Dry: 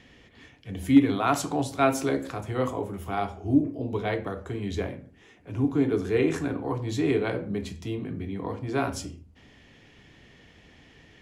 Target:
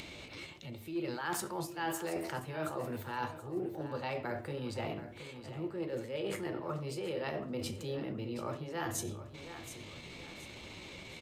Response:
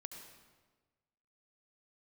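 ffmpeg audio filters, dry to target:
-af "areverse,acompressor=threshold=0.0158:ratio=8,areverse,lowshelf=f=480:g=-4,asetrate=53981,aresample=44100,atempo=0.816958,aecho=1:1:725|1450|2175:0.224|0.0716|0.0229,acompressor=mode=upward:threshold=0.00562:ratio=2.5,volume=1.5"

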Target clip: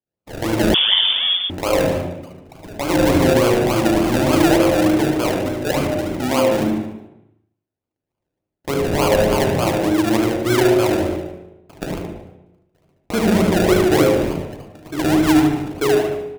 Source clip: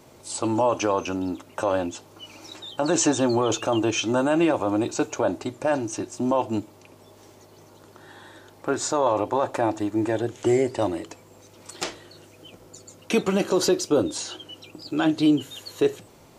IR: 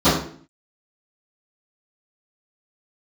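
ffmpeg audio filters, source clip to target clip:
-filter_complex "[0:a]agate=range=0.00708:threshold=0.01:ratio=16:detection=peak,asplit=2[s0][s1];[s1]adelay=36,volume=0.501[s2];[s0][s2]amix=inputs=2:normalize=0,aecho=1:1:74|148|222|296|370|444:0.596|0.274|0.126|0.058|0.0267|0.0123,acrusher=samples=33:mix=1:aa=0.000001:lfo=1:lforange=19.8:lforate=3.4,asplit=2[s3][s4];[1:a]atrim=start_sample=2205,asetrate=23814,aresample=44100,adelay=38[s5];[s4][s5]afir=irnorm=-1:irlink=0,volume=0.0316[s6];[s3][s6]amix=inputs=2:normalize=0,asettb=1/sr,asplit=3[s7][s8][s9];[s7]atrim=end=0.744[s10];[s8]atrim=start=0.74:end=1.5,asetpts=PTS-STARTPTS,afade=t=in:d=0.004:c=qsin,afade=t=out:st=0.756:d=0.004:c=qsin,lowpass=f=3100:t=q:w=0.5098,lowpass=f=3100:t=q:w=0.6013,lowpass=f=3100:t=q:w=0.9,lowpass=f=3100:t=q:w=2.563,afreqshift=-3600[s11];[s9]atrim=start=1.496[s12];[s10][s11]acrossfade=d=0.004:c1=hsin:c2=qsin[s13];[s13][s12]acrossfade=d=0.004:c1=qsin:c2=hsin"

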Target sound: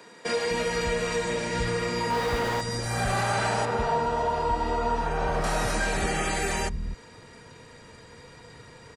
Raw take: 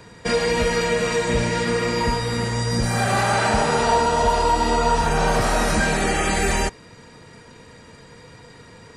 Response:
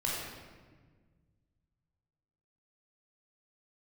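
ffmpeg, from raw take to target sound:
-filter_complex "[0:a]asettb=1/sr,asplit=3[s0][s1][s2];[s0]atrim=end=3.654[s3];[s1]atrim=start=3.65:end=5.44,asetpts=PTS-STARTPTS,afade=t=in:d=0.004:c=qsin,afade=t=out:st=1.786:d=0.004:c=qsin,lowpass=f=1800:p=1[s4];[s2]atrim=start=5.436[s5];[s3][s4]acrossfade=d=0.004:c1=hsin:c2=qsin[s6];[s6][s5]acrossfade=d=0.004:c1=qsin:c2=hsin,asplit=2[s7][s8];[s8]acompressor=threshold=0.0355:ratio=6,volume=0.841[s9];[s7][s9]amix=inputs=2:normalize=0,asettb=1/sr,asplit=3[s10][s11][s12];[s10]atrim=end=2.104[s13];[s11]atrim=start=2.1:end=2.61,asetpts=PTS-STARTPTS,afade=t=in:d=0.004:c=qsin,afade=t=out:st=0.506:d=0.004:c=qsin,asplit=2[s14][s15];[s15]highpass=f=720:p=1,volume=79.4,asoftclip=type=tanh:threshold=0.376[s16];[s14][s16]amix=inputs=2:normalize=0,lowpass=f=1000:p=1,volume=0.501[s17];[s12]atrim=start=2.606[s18];[s13][s17]acrossfade=d=0.004:c1=hsin:c2=qsin[s19];[s19][s18]acrossfade=d=0.004:c1=qsin:c2=hsin,acrossover=split=210[s20][s21];[s20]adelay=250[s22];[s22][s21]amix=inputs=2:normalize=0,volume=0.398"

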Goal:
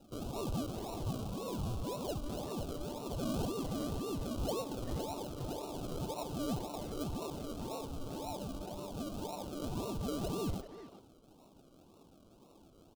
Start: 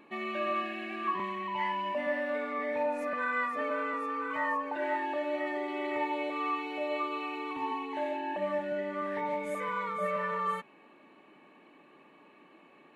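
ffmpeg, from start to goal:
-filter_complex "[0:a]lowpass=f=3400:w=0.5412,lowpass=f=3400:w=1.3066,equalizer=f=560:t=o:w=1.1:g=-15,bandreject=f=74.29:t=h:w=4,bandreject=f=148.58:t=h:w=4,bandreject=f=222.87:t=h:w=4,bandreject=f=297.16:t=h:w=4,bandreject=f=371.45:t=h:w=4,bandreject=f=445.74:t=h:w=4,bandreject=f=520.03:t=h:w=4,bandreject=f=594.32:t=h:w=4,bandreject=f=668.61:t=h:w=4,bandreject=f=742.9:t=h:w=4,bandreject=f=817.19:t=h:w=4,bandreject=f=891.48:t=h:w=4,bandreject=f=965.77:t=h:w=4,bandreject=f=1040.06:t=h:w=4,bandreject=f=1114.35:t=h:w=4,bandreject=f=1188.64:t=h:w=4,bandreject=f=1262.93:t=h:w=4,bandreject=f=1337.22:t=h:w=4,bandreject=f=1411.51:t=h:w=4,bandreject=f=1485.8:t=h:w=4,acrossover=split=170|370|1800[s0][s1][s2][s3];[s1]acompressor=threshold=0.00112:ratio=6[s4];[s0][s4][s2][s3]amix=inputs=4:normalize=0,acrusher=samples=39:mix=1:aa=0.000001:lfo=1:lforange=23.4:lforate=1.9,asoftclip=type=tanh:threshold=0.0266,asuperstop=centerf=1900:order=4:qfactor=1.2,asplit=2[s5][s6];[s6]adelay=390,highpass=300,lowpass=3400,asoftclip=type=hard:threshold=0.0126,volume=0.316[s7];[s5][s7]amix=inputs=2:normalize=0,volume=1.26"

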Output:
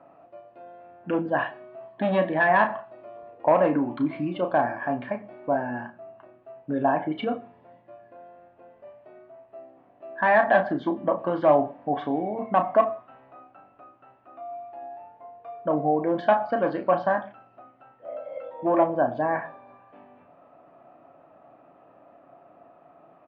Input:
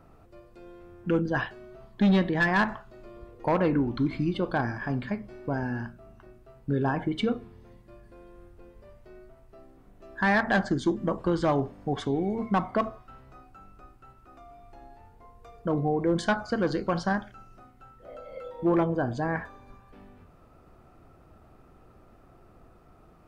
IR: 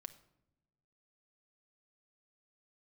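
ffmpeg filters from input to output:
-filter_complex "[0:a]highpass=330,equalizer=f=410:t=q:w=4:g=-10,equalizer=f=640:t=q:w=4:g=8,equalizer=f=1400:t=q:w=4:g=-7,equalizer=f=2100:t=q:w=4:g=-6,lowpass=f=2500:w=0.5412,lowpass=f=2500:w=1.3066,aecho=1:1:7.1:0.32,asplit=2[s0][s1];[1:a]atrim=start_sample=2205,atrim=end_sample=6174,adelay=33[s2];[s1][s2]afir=irnorm=-1:irlink=0,volume=0.708[s3];[s0][s3]amix=inputs=2:normalize=0,volume=1.78"

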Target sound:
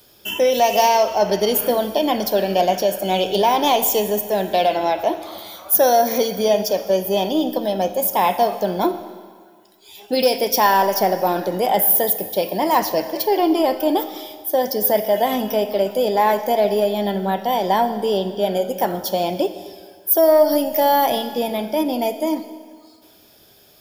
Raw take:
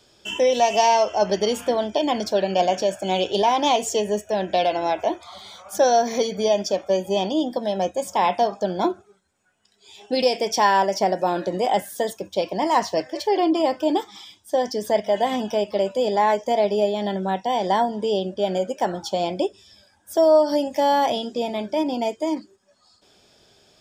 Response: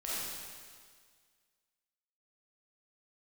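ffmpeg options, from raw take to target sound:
-filter_complex "[0:a]acontrast=35,aexciter=amount=14.8:drive=6.3:freq=11000,asplit=2[s0][s1];[1:a]atrim=start_sample=2205[s2];[s1][s2]afir=irnorm=-1:irlink=0,volume=0.211[s3];[s0][s3]amix=inputs=2:normalize=0,volume=0.668"

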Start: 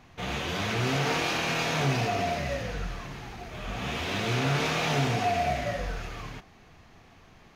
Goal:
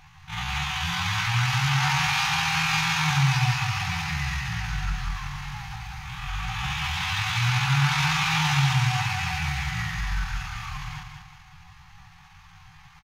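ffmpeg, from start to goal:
-af "afftfilt=real='re*(1-between(b*sr/4096,180,740))':imag='im*(1-between(b*sr/4096,180,740))':win_size=4096:overlap=0.75,atempo=0.58,aecho=1:1:189|378|567|756|945:0.473|0.199|0.0835|0.0351|0.0147,volume=1.78"

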